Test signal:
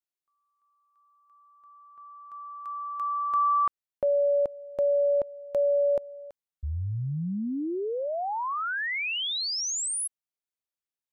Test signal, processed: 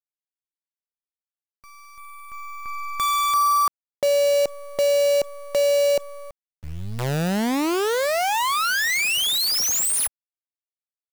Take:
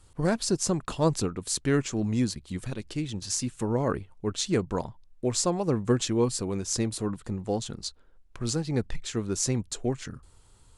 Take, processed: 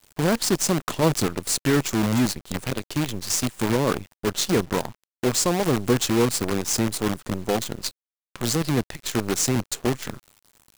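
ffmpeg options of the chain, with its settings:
ffmpeg -i in.wav -filter_complex "[0:a]highpass=110,asplit=2[link_01][link_02];[link_02]acompressor=threshold=-35dB:ratio=4:attack=2.5:release=48:knee=1:detection=rms,volume=3dB[link_03];[link_01][link_03]amix=inputs=2:normalize=0,acrusher=bits=5:dc=4:mix=0:aa=0.000001,volume=1.5dB" out.wav

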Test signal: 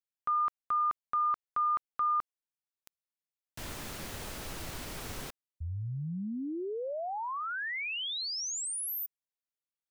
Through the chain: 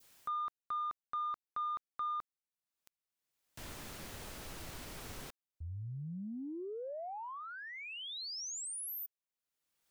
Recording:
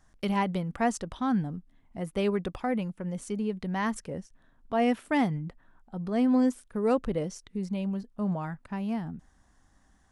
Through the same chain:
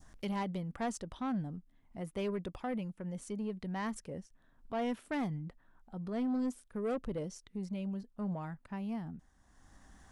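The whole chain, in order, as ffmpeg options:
ffmpeg -i in.wav -af "asoftclip=type=tanh:threshold=-23dB,acompressor=mode=upward:threshold=-39dB:ratio=4:attack=0.36:release=788:knee=2.83:detection=peak,adynamicequalizer=threshold=0.00631:dfrequency=1600:dqfactor=0.73:tfrequency=1600:tqfactor=0.73:attack=5:release=100:ratio=0.375:range=3:mode=cutabove:tftype=bell,volume=-6dB" out.wav

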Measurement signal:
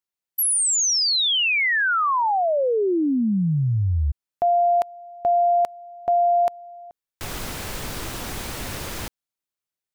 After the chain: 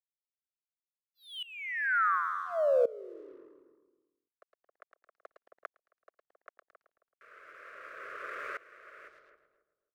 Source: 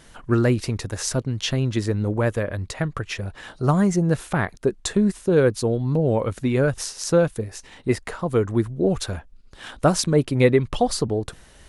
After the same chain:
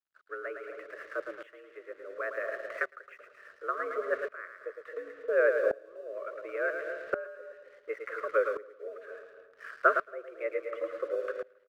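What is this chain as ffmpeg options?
ffmpeg -i in.wav -filter_complex "[0:a]asplit=2[link_01][link_02];[link_02]aecho=0:1:110|220|330|440|550|660:0.398|0.203|0.104|0.0528|0.0269|0.0137[link_03];[link_01][link_03]amix=inputs=2:normalize=0,afreqshift=-95,asuperstop=centerf=670:order=8:qfactor=1.5,highpass=frequency=240:width_type=q:width=0.5412,highpass=frequency=240:width_type=q:width=1.307,lowpass=frequency=2200:width_type=q:width=0.5176,lowpass=frequency=2200:width_type=q:width=0.7071,lowpass=frequency=2200:width_type=q:width=1.932,afreqshift=170,aeval=exprs='sgn(val(0))*max(abs(val(0))-0.00316,0)':channel_layout=same,equalizer=frequency=1400:width_type=o:width=0.82:gain=9.5,asplit=2[link_04][link_05];[link_05]adelay=269,lowpass=frequency=860:poles=1,volume=-9.5dB,asplit=2[link_06][link_07];[link_07]adelay=269,lowpass=frequency=860:poles=1,volume=0.2,asplit=2[link_08][link_09];[link_09]adelay=269,lowpass=frequency=860:poles=1,volume=0.2[link_10];[link_06][link_08][link_10]amix=inputs=3:normalize=0[link_11];[link_04][link_11]amix=inputs=2:normalize=0,aeval=exprs='val(0)*pow(10,-20*if(lt(mod(-0.7*n/s,1),2*abs(-0.7)/1000),1-mod(-0.7*n/s,1)/(2*abs(-0.7)/1000),(mod(-0.7*n/s,1)-2*abs(-0.7)/1000)/(1-2*abs(-0.7)/1000))/20)':channel_layout=same,volume=-3.5dB" out.wav

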